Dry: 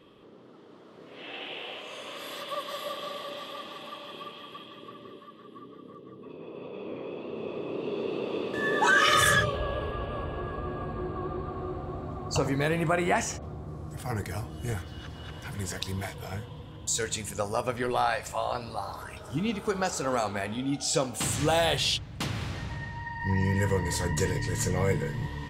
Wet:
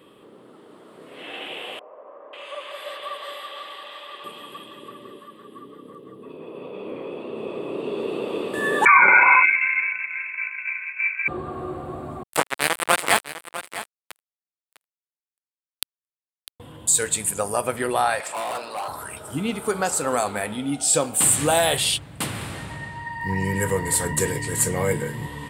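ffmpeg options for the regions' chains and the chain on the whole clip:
ffmpeg -i in.wav -filter_complex "[0:a]asettb=1/sr,asplit=3[link_01][link_02][link_03];[link_01]atrim=end=1.794[link_04];[link_02]atrim=start=1.79:end=4.24,asetpts=PTS-STARTPTS,afade=type=in:duration=0.004:curve=qsin,afade=type=out:start_time=2.446:duration=0.004:curve=qsin,acrossover=split=460 4300:gain=0.0708 1 0.112[link_05][link_06][link_07];[link_05][link_06][link_07]amix=inputs=3:normalize=0,acrossover=split=1000[link_08][link_09];[link_09]adelay=540[link_10];[link_08][link_10]amix=inputs=2:normalize=0,atrim=end_sample=108045[link_11];[link_03]atrim=start=4.236[link_12];[link_04][link_11]acrossfade=duration=0.004:curve1=hsin:curve2=qsin[link_13];[link_13][link_12]acrossfade=duration=0.004:curve1=qsin:curve2=hsin,asettb=1/sr,asplit=3[link_14][link_15][link_16];[link_14]atrim=end=8.854[link_17];[link_15]atrim=start=8.85:end=11.28,asetpts=PTS-STARTPTS,afade=type=in:duration=0.004:curve=qsin,afade=type=out:start_time=2.426:duration=0.004:curve=qsin,equalizer=frequency=420:width=0.71:gain=11.5,lowpass=frequency=2300:width_type=q:width=0.5098,lowpass=frequency=2300:width_type=q:width=0.6013,lowpass=frequency=2300:width_type=q:width=0.9,lowpass=frequency=2300:width_type=q:width=2.563,afreqshift=-2700,agate=range=-33dB:threshold=-21dB:ratio=3:release=100:detection=peak[link_18];[link_16]atrim=start=11.276[link_19];[link_17][link_18]acrossfade=duration=0.004:curve1=hsin:curve2=qsin[link_20];[link_20][link_19]acrossfade=duration=0.004:curve1=qsin:curve2=hsin,asettb=1/sr,asplit=3[link_21][link_22][link_23];[link_21]atrim=end=12.234[link_24];[link_22]atrim=start=12.23:end=16.6,asetpts=PTS-STARTPTS,afade=type=in:duration=0.004:curve=qsin,afade=type=out:start_time=4.366:duration=0.004:curve=qsin,acrusher=bits=2:mix=0:aa=0.5,asplit=2[link_25][link_26];[link_26]highpass=frequency=720:poles=1,volume=25dB,asoftclip=type=tanh:threshold=-9.5dB[link_27];[link_25][link_27]amix=inputs=2:normalize=0,lowpass=frequency=6300:poles=1,volume=-6dB,aecho=1:1:652:0.211,atrim=end_sample=192717[link_28];[link_23]atrim=start=16.596[link_29];[link_24][link_28]acrossfade=duration=0.004:curve1=hsin:curve2=qsin[link_30];[link_30][link_29]acrossfade=duration=0.004:curve1=qsin:curve2=hsin,asettb=1/sr,asplit=3[link_31][link_32][link_33];[link_31]atrim=end=18.204[link_34];[link_32]atrim=start=18.2:end=18.88,asetpts=PTS-STARTPTS,afade=type=in:duration=0.004:curve=qsin,afade=type=out:start_time=0.676:duration=0.004:curve=qsin,highpass=500,lowpass=4900,acontrast=26,asoftclip=type=hard:threshold=-31dB[link_35];[link_33]atrim=start=18.876[link_36];[link_34][link_35]acrossfade=duration=0.004:curve1=hsin:curve2=qsin[link_37];[link_37][link_36]acrossfade=duration=0.004:curve1=qsin:curve2=hsin,highpass=frequency=190:poles=1,highshelf=frequency=7300:width_type=q:width=3:gain=7,volume=5.5dB" out.wav

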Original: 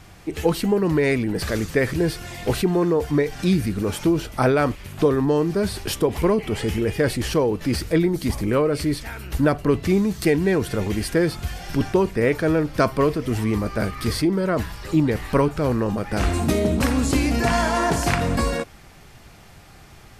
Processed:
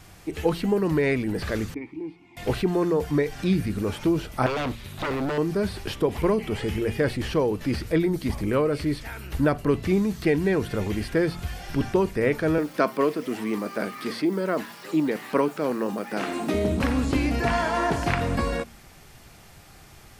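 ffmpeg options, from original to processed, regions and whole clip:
ffmpeg -i in.wav -filter_complex "[0:a]asettb=1/sr,asplit=3[link_01][link_02][link_03];[link_01]atrim=end=1.744[link_04];[link_02]atrim=start=1.74:end=2.37,asetpts=PTS-STARTPTS,afade=type=in:duration=0.004:curve=qsin,afade=type=out:start_time=0.626:duration=0.004:curve=qsin,acrossover=split=3400[link_05][link_06];[link_06]acompressor=threshold=-46dB:ratio=4:attack=1:release=60[link_07];[link_05][link_07]amix=inputs=2:normalize=0,asplit=3[link_08][link_09][link_10];[link_08]bandpass=frequency=300:width_type=q:width=8,volume=0dB[link_11];[link_09]bandpass=frequency=870:width_type=q:width=8,volume=-6dB[link_12];[link_10]bandpass=frequency=2240:width_type=q:width=8,volume=-9dB[link_13];[link_11][link_12][link_13]amix=inputs=3:normalize=0[link_14];[link_03]atrim=start=2.366[link_15];[link_04][link_14]acrossfade=duration=0.004:curve1=hsin:curve2=qsin[link_16];[link_16][link_15]acrossfade=duration=0.004:curve1=qsin:curve2=hsin,asettb=1/sr,asplit=3[link_17][link_18][link_19];[link_17]atrim=end=4.464[link_20];[link_18]atrim=start=4.46:end=5.38,asetpts=PTS-STARTPTS,afade=type=in:duration=0.004:curve=qsin,afade=type=out:start_time=0.916:duration=0.004:curve=qsin,equalizer=frequency=3800:width_type=o:width=0.27:gain=11,aeval=exprs='0.112*(abs(mod(val(0)/0.112+3,4)-2)-1)':channel_layout=same[link_21];[link_19]atrim=start=5.376[link_22];[link_20][link_21]acrossfade=duration=0.004:curve1=hsin:curve2=qsin[link_23];[link_23][link_22]acrossfade=duration=0.004:curve1=qsin:curve2=hsin,asettb=1/sr,asplit=3[link_24][link_25][link_26];[link_24]atrim=end=12.584[link_27];[link_25]atrim=start=12.58:end=16.54,asetpts=PTS-STARTPTS,afade=type=in:duration=0.004:curve=qsin,afade=type=out:start_time=3.956:duration=0.004:curve=qsin,acrusher=bits=9:dc=4:mix=0:aa=0.000001,highpass=frequency=200:width=0.5412,highpass=frequency=200:width=1.3066[link_28];[link_26]atrim=start=16.536[link_29];[link_27][link_28]acrossfade=duration=0.004:curve1=hsin:curve2=qsin[link_30];[link_30][link_29]acrossfade=duration=0.004:curve1=qsin:curve2=hsin,bandreject=frequency=57.53:width_type=h:width=4,bandreject=frequency=115.06:width_type=h:width=4,bandreject=frequency=172.59:width_type=h:width=4,bandreject=frequency=230.12:width_type=h:width=4,acrossover=split=3900[link_31][link_32];[link_32]acompressor=threshold=-48dB:ratio=4:attack=1:release=60[link_33];[link_31][link_33]amix=inputs=2:normalize=0,highshelf=frequency=6400:gain=6.5,volume=-3dB" out.wav

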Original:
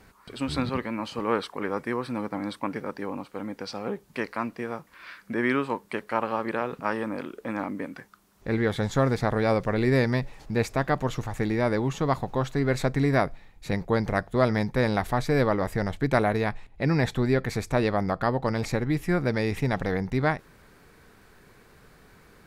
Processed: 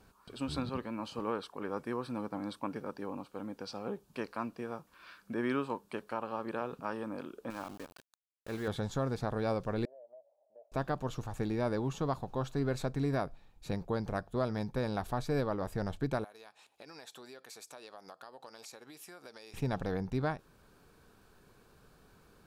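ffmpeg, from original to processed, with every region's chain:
ffmpeg -i in.wav -filter_complex "[0:a]asettb=1/sr,asplit=3[link_01][link_02][link_03];[link_01]atrim=end=7.504[link_04];[link_02]atrim=start=7.5:end=8.68,asetpts=PTS-STARTPTS,afade=type=in:duration=0.004:curve=qsin,afade=type=out:start_time=1.176:duration=0.004:curve=qsin,lowshelf=frequency=440:gain=-8.5,aeval=exprs='val(0)*gte(abs(val(0)),0.0119)':channel_layout=same[link_05];[link_03]atrim=start=8.676[link_06];[link_04][link_05]acrossfade=duration=0.004:curve1=hsin:curve2=qsin[link_07];[link_07][link_06]acrossfade=duration=0.004:curve1=qsin:curve2=hsin,asettb=1/sr,asplit=3[link_08][link_09][link_10];[link_08]atrim=end=9.854[link_11];[link_09]atrim=start=9.85:end=10.72,asetpts=PTS-STARTPTS,afade=type=in:duration=0.004:curve=qsin,afade=type=out:start_time=0.866:duration=0.004:curve=qsin,asuperpass=centerf=620:order=4:qfactor=5.8,acompressor=threshold=-46dB:ratio=3:attack=3.2:release=140:knee=1:detection=peak[link_12];[link_10]atrim=start=10.716[link_13];[link_11][link_12]acrossfade=duration=0.004:curve1=hsin:curve2=qsin[link_14];[link_14][link_13]acrossfade=duration=0.004:curve1=qsin:curve2=hsin,asettb=1/sr,asplit=3[link_15][link_16][link_17];[link_15]atrim=end=16.244[link_18];[link_16]atrim=start=16.24:end=19.54,asetpts=PTS-STARTPTS,afade=type=in:duration=0.004:curve=qsin,afade=type=out:start_time=3.296:duration=0.004:curve=qsin,highpass=490,equalizer=frequency=10000:width_type=o:width=2.8:gain=12.5,acompressor=threshold=-41dB:ratio=4:attack=3.2:release=140:knee=1:detection=peak[link_19];[link_17]atrim=start=19.536[link_20];[link_18][link_19]acrossfade=duration=0.004:curve1=hsin:curve2=qsin[link_21];[link_21][link_20]acrossfade=duration=0.004:curve1=qsin:curve2=hsin,equalizer=frequency=2000:width=5:gain=-13.5,alimiter=limit=-14.5dB:level=0:latency=1:release=499,volume=-7dB" out.wav

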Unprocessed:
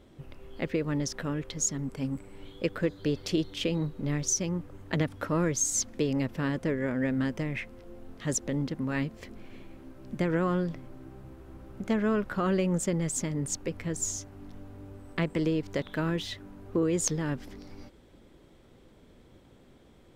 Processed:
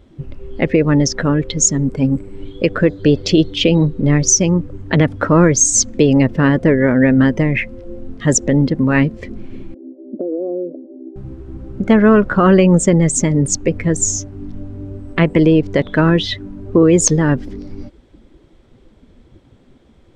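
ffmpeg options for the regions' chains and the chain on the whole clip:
ffmpeg -i in.wav -filter_complex "[0:a]asettb=1/sr,asplit=3[link_01][link_02][link_03];[link_01]atrim=end=9.744[link_04];[link_02]atrim=start=9.74:end=11.16,asetpts=PTS-STARTPTS,afade=type=in:duration=0.004:curve=qsin,afade=type=out:start_time=1.416:duration=0.004:curve=qsin,asuperpass=centerf=410:order=8:qfactor=0.98,acompressor=threshold=-35dB:ratio=6:attack=3.2:release=140:knee=1:detection=peak[link_05];[link_03]atrim=start=11.156[link_06];[link_04][link_05]acrossfade=duration=0.004:curve1=hsin:curve2=qsin[link_07];[link_07][link_06]acrossfade=duration=0.004:curve1=qsin:curve2=hsin,afftdn=noise_reduction=13:noise_floor=-42,lowpass=7800,alimiter=level_in=18dB:limit=-1dB:release=50:level=0:latency=1,volume=-1dB" out.wav

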